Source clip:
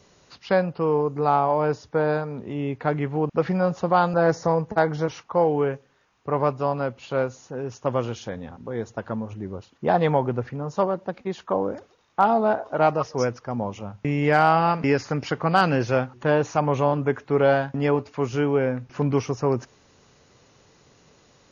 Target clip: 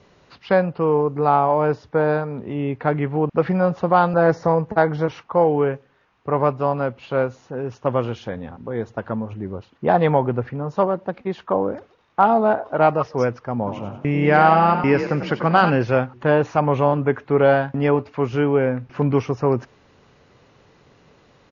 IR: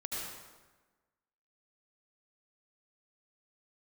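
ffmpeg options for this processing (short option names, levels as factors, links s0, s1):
-filter_complex "[0:a]lowpass=3300,asplit=3[s0][s1][s2];[s0]afade=t=out:st=13.66:d=0.02[s3];[s1]asplit=6[s4][s5][s6][s7][s8][s9];[s5]adelay=93,afreqshift=35,volume=0.355[s10];[s6]adelay=186,afreqshift=70,volume=0.164[s11];[s7]adelay=279,afreqshift=105,volume=0.075[s12];[s8]adelay=372,afreqshift=140,volume=0.0347[s13];[s9]adelay=465,afreqshift=175,volume=0.0158[s14];[s4][s10][s11][s12][s13][s14]amix=inputs=6:normalize=0,afade=t=in:st=13.66:d=0.02,afade=t=out:st=15.69:d=0.02[s15];[s2]afade=t=in:st=15.69:d=0.02[s16];[s3][s15][s16]amix=inputs=3:normalize=0,volume=1.5"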